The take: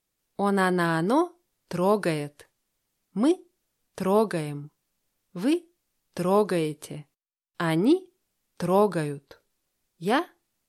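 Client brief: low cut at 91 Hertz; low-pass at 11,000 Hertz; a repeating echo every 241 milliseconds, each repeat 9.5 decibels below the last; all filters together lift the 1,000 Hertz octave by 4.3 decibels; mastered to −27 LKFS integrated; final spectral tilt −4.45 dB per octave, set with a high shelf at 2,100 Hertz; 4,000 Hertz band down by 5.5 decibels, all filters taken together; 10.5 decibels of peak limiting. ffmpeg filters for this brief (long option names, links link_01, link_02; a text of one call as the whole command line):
ffmpeg -i in.wav -af "highpass=91,lowpass=11000,equalizer=frequency=1000:width_type=o:gain=6,highshelf=frequency=2100:gain=-4,equalizer=frequency=4000:width_type=o:gain=-4,alimiter=limit=-17.5dB:level=0:latency=1,aecho=1:1:241|482|723|964:0.335|0.111|0.0365|0.012,volume=2.5dB" out.wav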